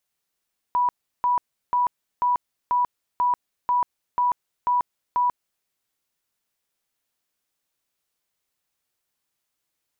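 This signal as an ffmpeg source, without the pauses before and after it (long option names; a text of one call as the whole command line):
ffmpeg -f lavfi -i "aevalsrc='0.133*sin(2*PI*981*mod(t,0.49))*lt(mod(t,0.49),136/981)':duration=4.9:sample_rate=44100" out.wav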